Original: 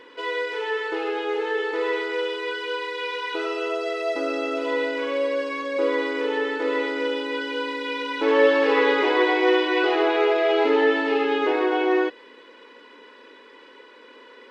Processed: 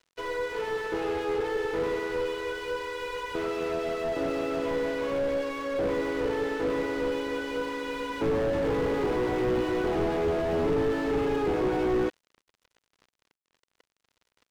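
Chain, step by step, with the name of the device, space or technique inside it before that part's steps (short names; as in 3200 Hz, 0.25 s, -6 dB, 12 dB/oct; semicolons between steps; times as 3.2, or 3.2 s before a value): early transistor amplifier (crossover distortion -40 dBFS; slew limiter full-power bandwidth 29 Hz)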